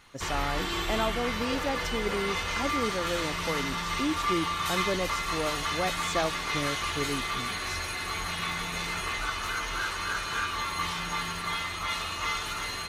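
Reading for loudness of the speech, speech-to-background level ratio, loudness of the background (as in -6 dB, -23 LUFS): -33.5 LUFS, -3.0 dB, -30.5 LUFS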